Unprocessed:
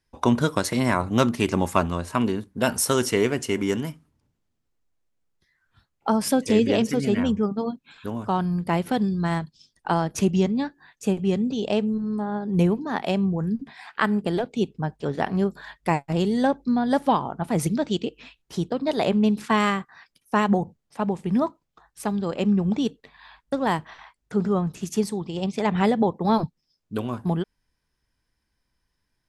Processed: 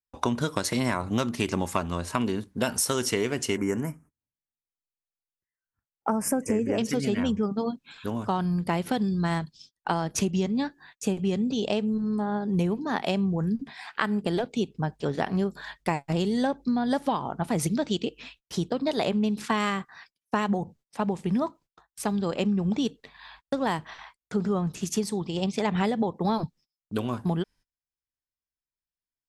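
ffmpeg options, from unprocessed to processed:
ffmpeg -i in.wav -filter_complex "[0:a]asettb=1/sr,asplit=3[link_01][link_02][link_03];[link_01]atrim=end=3.574[link_04];[link_02]atrim=start=3.57:end=6.78,asetpts=PTS-STARTPTS,afade=type=in:duration=0.004:curve=qsin,afade=type=out:start_time=3.206:duration=0.004:curve=qsin,asuperstop=centerf=3800:order=4:qfactor=0.8[link_05];[link_03]atrim=start=6.776[link_06];[link_04][link_05]acrossfade=duration=0.004:curve1=hsin:curve2=qsin[link_07];[link_07][link_06]acrossfade=duration=0.004:curve1=qsin:curve2=hsin,equalizer=frequency=5400:width_type=o:width=2.1:gain=4,acompressor=threshold=-22dB:ratio=6,agate=range=-27dB:threshold=-52dB:ratio=16:detection=peak" out.wav

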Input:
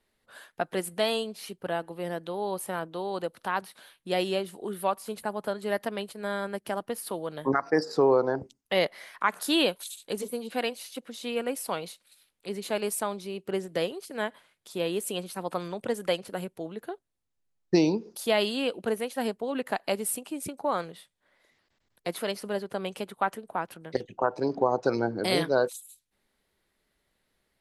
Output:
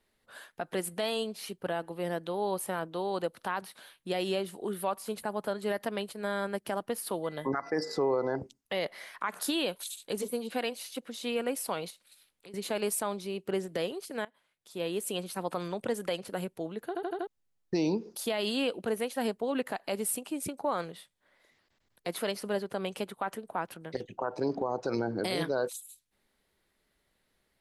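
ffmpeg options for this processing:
ffmpeg -i in.wav -filter_complex "[0:a]asettb=1/sr,asplit=3[link_01][link_02][link_03];[link_01]atrim=end=7.244[link_04];[link_02]atrim=start=7.24:end=8.37,asetpts=PTS-STARTPTS,afade=type=in:duration=0.004:curve=qsin,afade=type=out:start_time=1.126:duration=0.004:curve=qsin,aeval=exprs='val(0)+0.00251*sin(2*PI*2000*n/s)':channel_layout=same[link_05];[link_03]atrim=start=8.366[link_06];[link_04][link_05]acrossfade=duration=0.004:curve1=hsin:curve2=qsin[link_07];[link_07][link_06]acrossfade=duration=0.004:curve1=qsin:curve2=hsin,asettb=1/sr,asplit=3[link_08][link_09][link_10];[link_08]atrim=end=11.904[link_11];[link_09]atrim=start=11.9:end=12.54,asetpts=PTS-STARTPTS,afade=type=in:duration=0.004:curve=qsin,afade=type=out:start_time=0.636:duration=0.004:curve=qsin,acompressor=threshold=-48dB:ratio=5:attack=3.2:release=140:knee=1:detection=peak[link_12];[link_10]atrim=start=12.536[link_13];[link_11][link_12]acrossfade=duration=0.004:curve1=hsin:curve2=qsin[link_14];[link_14][link_13]acrossfade=duration=0.004:curve1=qsin:curve2=hsin,asplit=7[link_15][link_16][link_17][link_18][link_19][link_20][link_21];[link_15]atrim=end=14.25,asetpts=PTS-STARTPTS,afade=type=out:start_time=14.246:duration=0.004:curve=hsin:silence=0.0794328[link_22];[link_16]atrim=start=14.25:end=16.952,asetpts=PTS-STARTPTS,afade=type=in:duration=1.05:silence=0.0794328[link_23];[link_17]atrim=start=16.868:end=16.952[link_24];[link_18]atrim=start=16.868:end=16.952[link_25];[link_19]atrim=start=16.868:end=16.952[link_26];[link_20]atrim=start=16.868:end=16.952[link_27];[link_21]atrim=start=17.268[link_28];[link_22][link_23]concat=n=2:v=0:a=1[link_29];[link_29][link_24]acrossfade=duration=0.004:curve1=hsin:curve2=hsin[link_30];[link_30][link_25]acrossfade=duration=0.004:curve1=hsin:curve2=hsin[link_31];[link_31][link_26]acrossfade=duration=0.004:curve1=hsin:curve2=hsin[link_32];[link_32][link_27]acrossfade=duration=0.004:curve1=hsin:curve2=hsin[link_33];[link_33][link_28]acrossfade=duration=0.004:curve1=hsin:curve2=hsin,alimiter=limit=-20.5dB:level=0:latency=1:release=60" out.wav

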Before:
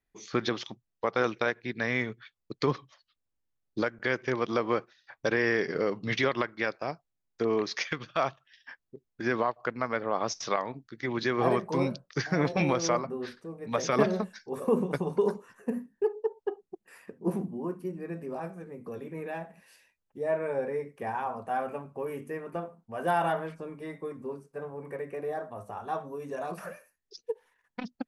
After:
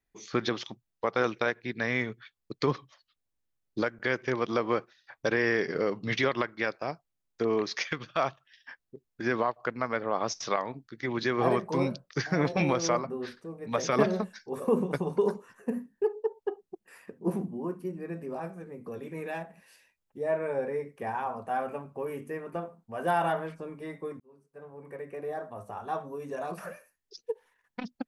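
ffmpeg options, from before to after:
ffmpeg -i in.wav -filter_complex "[0:a]asettb=1/sr,asplit=3[link_01][link_02][link_03];[link_01]atrim=end=19.034[link_04];[link_02]atrim=start=19.03:end=19.43,asetpts=PTS-STARTPTS,afade=type=in:duration=0.004:curve=qsin,afade=type=out:start_time=0.396:duration=0.004:curve=qsin,equalizer=frequency=6300:width_type=o:width=2.6:gain=7[link_05];[link_03]atrim=start=19.426[link_06];[link_04][link_05]acrossfade=duration=0.004:curve1=hsin:curve2=qsin[link_07];[link_07][link_06]acrossfade=duration=0.004:curve1=qsin:curve2=hsin,asplit=2[link_08][link_09];[link_08]atrim=end=24.2,asetpts=PTS-STARTPTS,afade=type=out:start_time=24.196:duration=0.004:curve=hsin[link_10];[link_09]atrim=start=24.2,asetpts=PTS-STARTPTS,afade=type=in:duration=1.77:curve=qsin[link_11];[link_10][link_11]concat=n=2:v=0:a=1" out.wav

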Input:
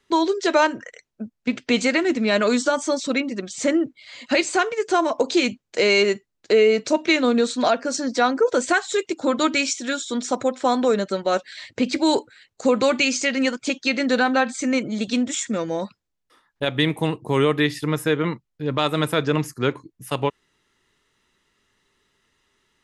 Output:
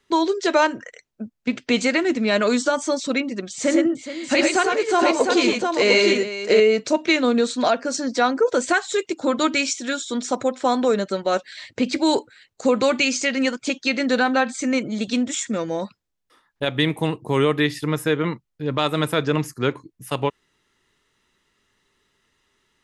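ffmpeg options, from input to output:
ffmpeg -i in.wav -filter_complex "[0:a]asettb=1/sr,asplit=3[link_01][link_02][link_03];[link_01]atrim=end=3.534[link_04];[link_02]atrim=start=3.53:end=6.6,asetpts=PTS-STARTPTS,afade=type=in:duration=0.004:curve=qsin,afade=type=out:start_time=3.066:duration=0.004:curve=qsin,aecho=1:1:89|107|420|705:0.398|0.596|0.237|0.596,atrim=end_sample=135387[link_05];[link_03]atrim=start=6.596[link_06];[link_04][link_05]acrossfade=duration=0.004:curve1=hsin:curve2=qsin[link_07];[link_07][link_06]acrossfade=duration=0.004:curve1=qsin:curve2=hsin" out.wav

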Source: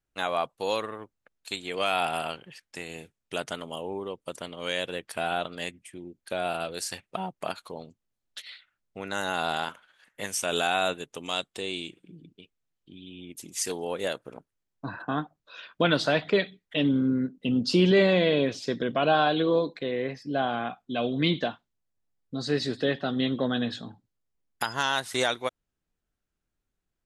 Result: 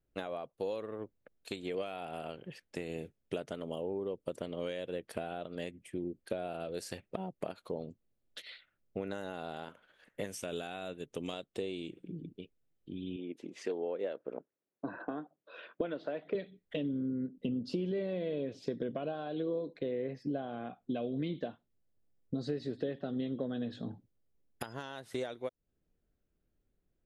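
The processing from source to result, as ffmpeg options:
ffmpeg -i in.wav -filter_complex "[0:a]asettb=1/sr,asplit=3[link_01][link_02][link_03];[link_01]atrim=end=10.354[link_04];[link_02]atrim=start=10.35:end=11.33,asetpts=PTS-STARTPTS,afade=type=in:duration=0.004:curve=qsin,afade=type=out:start_time=0.976:duration=0.004:curve=qsin,equalizer=frequency=620:width_type=o:width=2.4:gain=-5[link_05];[link_03]atrim=start=11.326[link_06];[link_04][link_05]acrossfade=duration=0.004:curve1=hsin:curve2=qsin[link_07];[link_07][link_06]acrossfade=duration=0.004:curve1=qsin:curve2=hsin,asettb=1/sr,asplit=3[link_08][link_09][link_10];[link_08]atrim=end=13.164[link_11];[link_09]atrim=start=13.16:end=16.35,asetpts=PTS-STARTPTS,afade=type=in:duration=0.004:curve=qsin,afade=type=out:start_time=3.186:duration=0.004:curve=qsin,highpass=290,lowpass=2700[link_12];[link_10]atrim=start=16.346[link_13];[link_11][link_12]acrossfade=duration=0.004:curve1=hsin:curve2=qsin[link_14];[link_14][link_13]acrossfade=duration=0.004:curve1=qsin:curve2=hsin,equalizer=frequency=7600:width_type=o:width=1.9:gain=-7,acompressor=threshold=-38dB:ratio=12,lowshelf=frequency=700:width_type=q:width=1.5:gain=7,volume=-2dB" out.wav

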